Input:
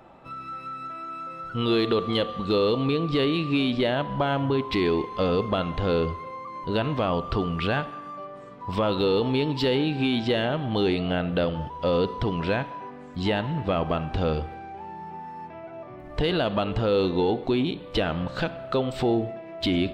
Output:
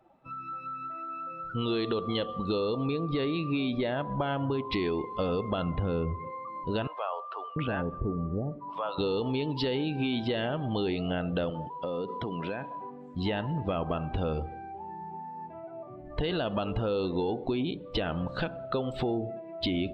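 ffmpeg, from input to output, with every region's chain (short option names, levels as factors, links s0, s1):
-filter_complex "[0:a]asettb=1/sr,asplit=3[s0][s1][s2];[s0]atrim=end=2.604[s3];[s1]atrim=start=2.6:end=4.22,asetpts=PTS-STARTPTS,afade=t=in:d=0.004:c=qsin,afade=t=out:st=1.616:d=0.004:c=qsin,lowpass=5300,bandreject=f=3000:w=9.8[s4];[s2]atrim=start=4.216[s5];[s3][s4]acrossfade=d=0.004:c1=hsin:c2=qsin[s6];[s6][s5]acrossfade=d=0.004:c1=qsin:c2=hsin,asettb=1/sr,asplit=3[s7][s8][s9];[s7]atrim=end=5.624[s10];[s8]atrim=start=5.62:end=6.3,asetpts=PTS-STARTPTS,afade=t=in:d=0.004:c=qsin,afade=t=out:st=0.676:d=0.004:c=qsin,highpass=50,bass=f=250:g=7,treble=f=4000:g=-8[s11];[s9]atrim=start=6.296[s12];[s10][s11]acrossfade=d=0.004:c1=hsin:c2=qsin[s13];[s13][s12]acrossfade=d=0.004:c1=qsin:c2=hsin,asettb=1/sr,asplit=3[s14][s15][s16];[s14]atrim=end=6.874[s17];[s15]atrim=start=6.87:end=8.98,asetpts=PTS-STARTPTS,afade=t=in:d=0.004:c=qsin,afade=t=out:st=2.106:d=0.004:c=qsin,lowpass=f=1900:p=1,acrossover=split=600[s18][s19];[s18]adelay=690[s20];[s20][s19]amix=inputs=2:normalize=0,atrim=end_sample=93051[s21];[s16]atrim=start=8.976[s22];[s17][s21]acrossfade=d=0.004:c1=hsin:c2=qsin[s23];[s23][s22]acrossfade=d=0.004:c1=qsin:c2=hsin,asettb=1/sr,asplit=3[s24][s25][s26];[s24]atrim=end=11.504[s27];[s25]atrim=start=11.5:end=12.74,asetpts=PTS-STARTPTS,afade=t=in:d=0.004:c=qsin,afade=t=out:st=1.236:d=0.004:c=qsin,highpass=160,acompressor=threshold=0.0447:ratio=5:attack=3.2:release=140:knee=1:detection=peak[s28];[s26]atrim=start=12.736[s29];[s27][s28]acrossfade=d=0.004:c1=hsin:c2=qsin[s30];[s30][s29]acrossfade=d=0.004:c1=qsin:c2=hsin,afftdn=nr=15:nf=-39,acompressor=threshold=0.0631:ratio=6,volume=0.794"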